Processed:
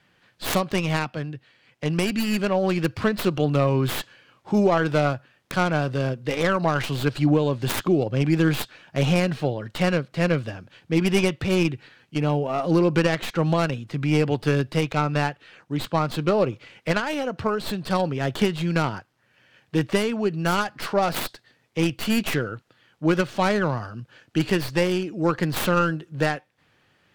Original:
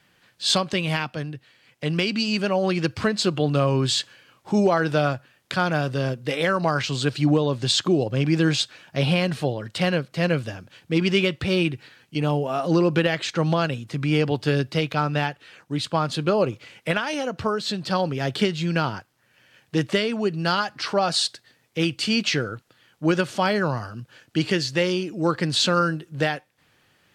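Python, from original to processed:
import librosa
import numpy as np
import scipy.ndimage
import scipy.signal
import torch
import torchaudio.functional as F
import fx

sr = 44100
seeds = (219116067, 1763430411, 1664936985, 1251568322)

y = fx.tracing_dist(x, sr, depth_ms=0.37)
y = fx.high_shelf(y, sr, hz=6200.0, db=-11.0)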